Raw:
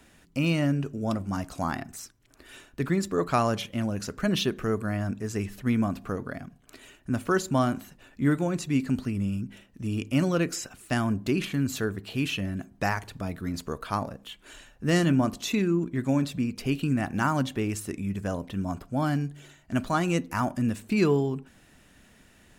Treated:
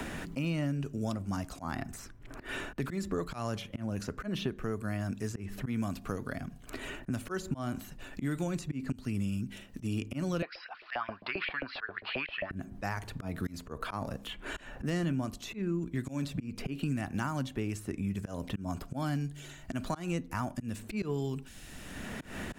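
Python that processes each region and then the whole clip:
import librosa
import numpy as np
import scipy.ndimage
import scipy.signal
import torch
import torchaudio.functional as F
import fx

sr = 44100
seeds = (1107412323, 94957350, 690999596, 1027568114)

y = fx.chain(x, sr, fx.steep_lowpass(hz=5000.0, slope=96),
    fx.filter_lfo_highpass(shape='saw_up', hz=7.5, low_hz=540.0, high_hz=2600.0, q=5.9), at=(10.42, 12.51))
y = fx.low_shelf(y, sr, hz=66.0, db=12.0)
y = fx.auto_swell(y, sr, attack_ms=232.0)
y = fx.band_squash(y, sr, depth_pct=100)
y = y * 10.0 ** (-6.0 / 20.0)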